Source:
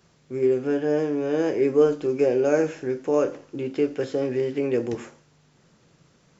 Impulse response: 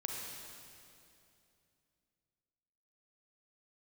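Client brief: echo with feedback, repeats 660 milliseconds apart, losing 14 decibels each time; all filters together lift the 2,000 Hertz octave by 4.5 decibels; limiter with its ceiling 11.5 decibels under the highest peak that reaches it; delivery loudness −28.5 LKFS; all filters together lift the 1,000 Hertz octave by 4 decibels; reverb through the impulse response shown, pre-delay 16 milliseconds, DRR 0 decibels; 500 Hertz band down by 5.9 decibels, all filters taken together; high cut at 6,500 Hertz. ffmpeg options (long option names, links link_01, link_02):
-filter_complex "[0:a]lowpass=6500,equalizer=frequency=500:width_type=o:gain=-9,equalizer=frequency=1000:width_type=o:gain=8,equalizer=frequency=2000:width_type=o:gain=3.5,alimiter=limit=-20dB:level=0:latency=1,aecho=1:1:660|1320:0.2|0.0399,asplit=2[link_01][link_02];[1:a]atrim=start_sample=2205,adelay=16[link_03];[link_02][link_03]afir=irnorm=-1:irlink=0,volume=-1.5dB[link_04];[link_01][link_04]amix=inputs=2:normalize=0,volume=-0.5dB"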